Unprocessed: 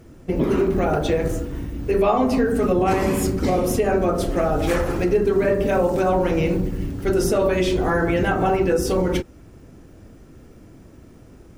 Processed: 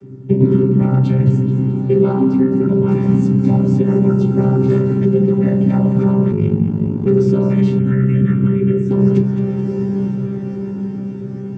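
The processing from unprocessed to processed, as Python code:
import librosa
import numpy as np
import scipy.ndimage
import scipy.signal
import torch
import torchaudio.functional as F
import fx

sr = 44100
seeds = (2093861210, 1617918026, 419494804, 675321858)

y = fx.chord_vocoder(x, sr, chord='bare fifth', root=48)
y = fx.low_shelf_res(y, sr, hz=370.0, db=9.5, q=3.0)
y = y + 0.64 * np.pad(y, (int(2.2 * sr / 1000.0), 0))[:len(y)]
y = fx.echo_diffused(y, sr, ms=960, feedback_pct=59, wet_db=-12.5)
y = fx.rider(y, sr, range_db=4, speed_s=0.5)
y = fx.echo_feedback(y, sr, ms=215, feedback_pct=55, wet_db=-11.0)
y = fx.ring_mod(y, sr, carrier_hz=25.0, at=(6.31, 7.06))
y = fx.fixed_phaser(y, sr, hz=2000.0, stages=4, at=(7.79, 8.91))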